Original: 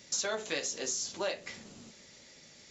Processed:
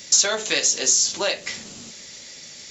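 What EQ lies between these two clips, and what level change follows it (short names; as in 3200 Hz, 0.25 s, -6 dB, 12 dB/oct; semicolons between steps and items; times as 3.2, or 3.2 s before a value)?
high shelf 2300 Hz +10 dB; +8.0 dB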